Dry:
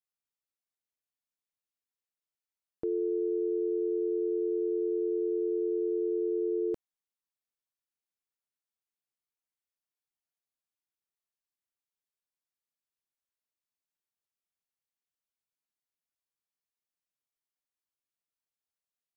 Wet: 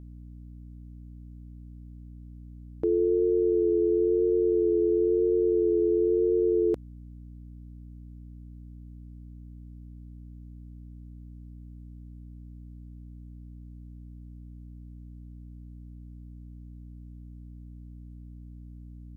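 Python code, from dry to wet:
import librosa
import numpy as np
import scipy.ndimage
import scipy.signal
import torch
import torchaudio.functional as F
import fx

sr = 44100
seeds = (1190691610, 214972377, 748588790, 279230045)

y = fx.vibrato(x, sr, rate_hz=0.99, depth_cents=27.0)
y = fx.add_hum(y, sr, base_hz=60, snr_db=14)
y = F.gain(torch.from_numpy(y), 6.5).numpy()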